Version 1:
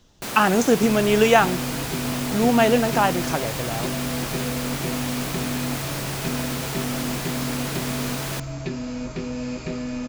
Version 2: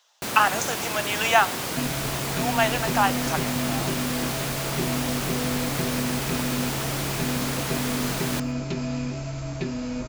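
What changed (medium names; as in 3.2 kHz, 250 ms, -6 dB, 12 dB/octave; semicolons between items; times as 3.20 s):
speech: add inverse Chebyshev high-pass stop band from 270 Hz, stop band 50 dB; first sound: send +8.5 dB; second sound: entry +0.95 s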